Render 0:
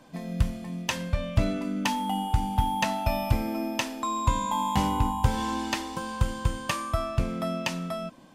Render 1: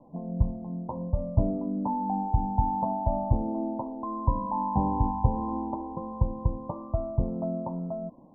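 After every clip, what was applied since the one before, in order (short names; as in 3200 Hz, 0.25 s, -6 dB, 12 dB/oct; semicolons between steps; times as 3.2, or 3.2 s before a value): steep low-pass 1000 Hz 72 dB/oct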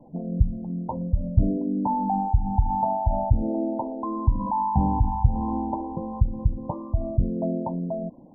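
formant sharpening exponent 2; gain +4.5 dB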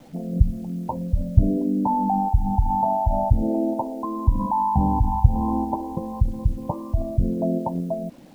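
in parallel at -1 dB: level quantiser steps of 14 dB; on the sum: bit-crush 9-bit; gain -1 dB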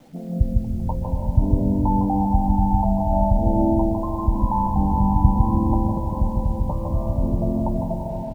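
echo 0.155 s -4 dB; digital reverb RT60 3.8 s, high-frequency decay 0.4×, pre-delay 0.11 s, DRR 1 dB; gain -2.5 dB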